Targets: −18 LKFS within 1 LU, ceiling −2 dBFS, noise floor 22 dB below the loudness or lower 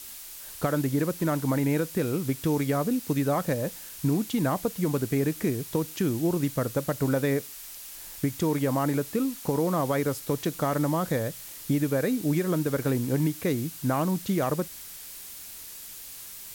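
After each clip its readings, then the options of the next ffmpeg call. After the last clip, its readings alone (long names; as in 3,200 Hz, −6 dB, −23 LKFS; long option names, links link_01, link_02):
background noise floor −43 dBFS; target noise floor −50 dBFS; integrated loudness −27.5 LKFS; sample peak −14.5 dBFS; target loudness −18.0 LKFS
→ -af "afftdn=noise_reduction=7:noise_floor=-43"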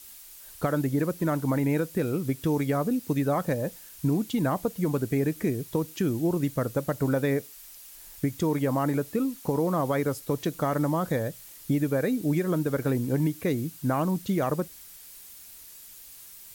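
background noise floor −48 dBFS; target noise floor −50 dBFS
→ -af "afftdn=noise_reduction=6:noise_floor=-48"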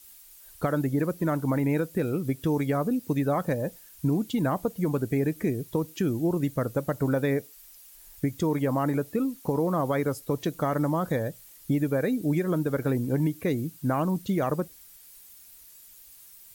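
background noise floor −51 dBFS; integrated loudness −27.5 LKFS; sample peak −15.0 dBFS; target loudness −18.0 LKFS
→ -af "volume=9.5dB"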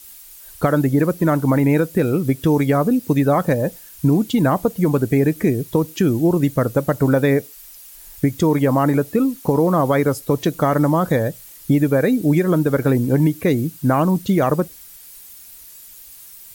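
integrated loudness −18.0 LKFS; sample peak −5.5 dBFS; background noise floor −42 dBFS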